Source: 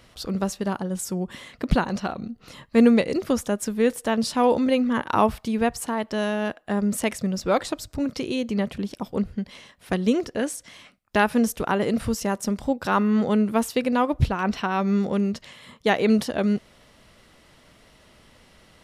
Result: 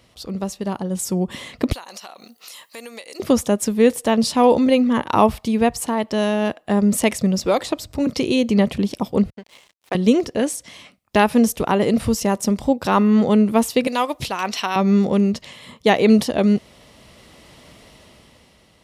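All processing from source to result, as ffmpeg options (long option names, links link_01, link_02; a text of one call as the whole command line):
ffmpeg -i in.wav -filter_complex "[0:a]asettb=1/sr,asplit=3[link_01][link_02][link_03];[link_01]atrim=end=1.724[link_04];[link_02]atrim=start=1.72:end=3.2,asetpts=PTS-STARTPTS,afade=type=in:duration=0.004:curve=qsin,afade=type=out:start_time=1.476:duration=0.004:curve=qsin,highpass=730,aemphasis=mode=production:type=75fm,acompressor=threshold=-45dB:ratio=3:attack=3.2:release=140:knee=1:detection=peak[link_05];[link_03]atrim=start=3.196[link_06];[link_04][link_05]acrossfade=duration=0.004:curve1=hsin:curve2=qsin[link_07];[link_07][link_06]acrossfade=duration=0.004:curve1=qsin:curve2=hsin,asettb=1/sr,asplit=3[link_08][link_09][link_10];[link_08]atrim=end=7.444[link_11];[link_09]atrim=start=7.44:end=8.07,asetpts=PTS-STARTPTS,afade=type=in:duration=0.004:curve=qsin,afade=type=out:start_time=0.626:duration=0.004:curve=qsin,highshelf=frequency=8400:gain=5.5,bandreject=frequency=50:width_type=h:width=6,bandreject=frequency=100:width_type=h:width=6,bandreject=frequency=150:width_type=h:width=6,acrossover=split=270|4000[link_12][link_13][link_14];[link_12]acompressor=threshold=-40dB:ratio=4[link_15];[link_13]acompressor=threshold=-21dB:ratio=4[link_16];[link_14]acompressor=threshold=-44dB:ratio=4[link_17];[link_15][link_16][link_17]amix=inputs=3:normalize=0[link_18];[link_10]atrim=start=8.066[link_19];[link_11][link_18]acrossfade=duration=0.004:curve1=hsin:curve2=qsin[link_20];[link_20][link_19]acrossfade=duration=0.004:curve1=qsin:curve2=hsin,asettb=1/sr,asplit=3[link_21][link_22][link_23];[link_21]atrim=end=9.304[link_24];[link_22]atrim=start=9.3:end=9.95,asetpts=PTS-STARTPTS,afade=type=in:duration=0.004:curve=qsin,afade=type=out:start_time=0.646:duration=0.004:curve=qsin,highpass=500,equalizer=frequency=8300:width=0.66:gain=-9.5,aeval=exprs='sgn(val(0))*max(abs(val(0))-0.00355,0)':channel_layout=same[link_25];[link_23]atrim=start=9.946[link_26];[link_24][link_25]acrossfade=duration=0.004:curve1=hsin:curve2=qsin[link_27];[link_27][link_26]acrossfade=duration=0.004:curve1=qsin:curve2=hsin,asettb=1/sr,asplit=3[link_28][link_29][link_30];[link_28]atrim=end=13.874[link_31];[link_29]atrim=start=13.87:end=14.76,asetpts=PTS-STARTPTS,afade=type=in:duration=0.004:curve=qsin,afade=type=out:start_time=0.886:duration=0.004:curve=qsin,highpass=frequency=840:poles=1,highshelf=frequency=3400:gain=10[link_32];[link_30]atrim=start=14.756[link_33];[link_31][link_32]acrossfade=duration=0.004:curve1=hsin:curve2=qsin[link_34];[link_34][link_33]acrossfade=duration=0.004:curve1=qsin:curve2=hsin,equalizer=frequency=1500:width=2.8:gain=-7,dynaudnorm=framelen=290:gausssize=7:maxgain=11.5dB,highpass=45,volume=-1dB" out.wav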